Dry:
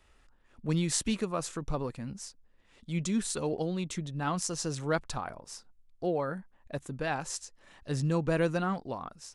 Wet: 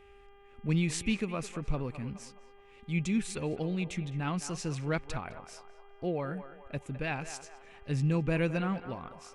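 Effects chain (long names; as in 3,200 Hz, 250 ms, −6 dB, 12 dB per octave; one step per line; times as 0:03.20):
parametric band 2,400 Hz +14 dB 0.7 octaves
hum with harmonics 400 Hz, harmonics 8, −54 dBFS −5 dB per octave
low-shelf EQ 340 Hz +11 dB
on a send: feedback echo with a band-pass in the loop 209 ms, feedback 51%, band-pass 950 Hz, level −10 dB
on the sum: level −7.5 dB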